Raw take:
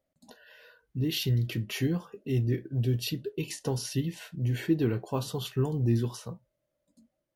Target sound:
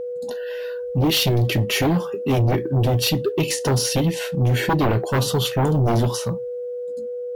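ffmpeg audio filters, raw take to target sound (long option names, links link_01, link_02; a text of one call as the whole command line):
ffmpeg -i in.wav -af "aeval=exprs='val(0)+0.00891*sin(2*PI*490*n/s)':channel_layout=same,aeval=exprs='0.188*sin(PI/2*3.55*val(0)/0.188)':channel_layout=same" out.wav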